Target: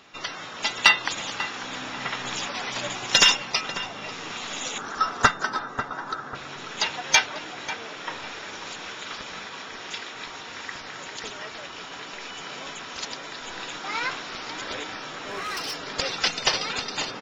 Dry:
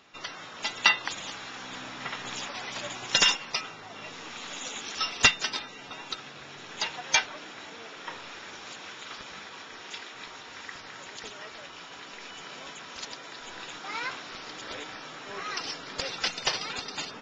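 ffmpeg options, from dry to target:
-filter_complex "[0:a]asettb=1/sr,asplit=3[s0][s1][s2];[s0]atrim=end=4.784[s3];[s1]atrim=start=4.78:end=6.35,asetpts=PTS-STARTPTS,afade=t=in:d=0.004:c=qsin,afade=t=out:st=1.566:d=0.004:c=qsin,highshelf=f=1900:t=q:w=3:g=-9.5[s4];[s2]atrim=start=6.346[s5];[s3][s4]acrossfade=d=0.004:c1=hsin:c2=qsin[s6];[s6][s5]acrossfade=d=0.004:c1=qsin:c2=hsin,acontrast=38,asettb=1/sr,asplit=3[s7][s8][s9];[s7]atrim=end=15.024[s10];[s8]atrim=start=15.02:end=15.79,asetpts=PTS-STARTPTS,afade=t=in:d=0.004:c=qsin,afade=t=out:st=0.766:d=0.004:c=qsin,asoftclip=type=hard:threshold=0.0422[s11];[s9]atrim=start=15.786[s12];[s10][s11]acrossfade=d=0.004:c1=hsin:c2=qsin[s13];[s13][s12]acrossfade=d=0.004:c1=qsin:c2=hsin,asplit=2[s14][s15];[s15]adelay=543,lowpass=f=1500:p=1,volume=0.355,asplit=2[s16][s17];[s17]adelay=543,lowpass=f=1500:p=1,volume=0.42,asplit=2[s18][s19];[s19]adelay=543,lowpass=f=1500:p=1,volume=0.42,asplit=2[s20][s21];[s21]adelay=543,lowpass=f=1500:p=1,volume=0.42,asplit=2[s22][s23];[s23]adelay=543,lowpass=f=1500:p=1,volume=0.42[s24];[s14][s16][s18][s20][s22][s24]amix=inputs=6:normalize=0"

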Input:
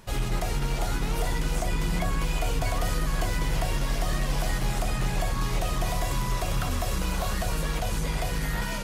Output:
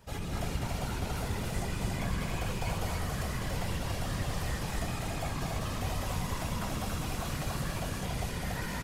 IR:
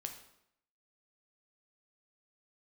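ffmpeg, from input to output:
-af "flanger=delay=6.5:depth=7.7:regen=59:speed=0.31:shape=triangular,afftfilt=real='hypot(re,im)*cos(2*PI*random(0))':imag='hypot(re,im)*sin(2*PI*random(1))':win_size=512:overlap=0.75,aecho=1:1:204.1|282.8:0.562|0.708,volume=1.26"

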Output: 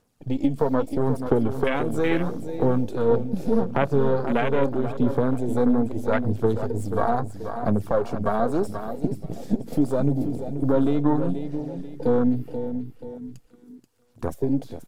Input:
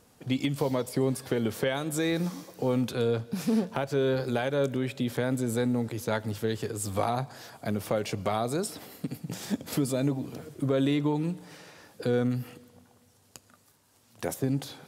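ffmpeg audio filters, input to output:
-filter_complex "[0:a]aeval=exprs='if(lt(val(0),0),0.447*val(0),val(0))':c=same,aphaser=in_gain=1:out_gain=1:delay=4.5:decay=0.42:speed=0.78:type=sinusoidal,asplit=2[s0][s1];[s1]aecho=0:1:483|966|1449|1932|2415:0.355|0.156|0.0687|0.0302|0.0133[s2];[s0][s2]amix=inputs=2:normalize=0,afwtdn=0.0158,volume=2.24"

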